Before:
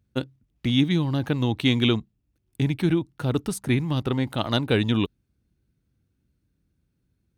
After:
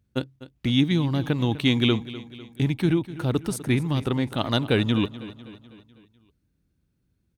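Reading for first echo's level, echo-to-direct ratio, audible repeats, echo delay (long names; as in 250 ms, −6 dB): −16.0 dB, −14.5 dB, 4, 250 ms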